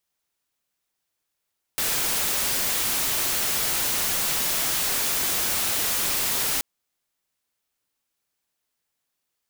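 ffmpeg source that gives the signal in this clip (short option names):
-f lavfi -i "anoisesrc=c=white:a=0.103:d=4.83:r=44100:seed=1"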